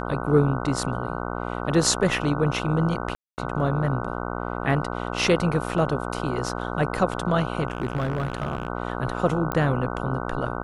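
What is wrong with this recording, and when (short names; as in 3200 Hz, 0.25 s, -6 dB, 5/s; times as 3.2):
buzz 60 Hz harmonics 25 -30 dBFS
3.15–3.38 gap 0.229 s
7.68–8.68 clipped -20.5 dBFS
9.52 pop -12 dBFS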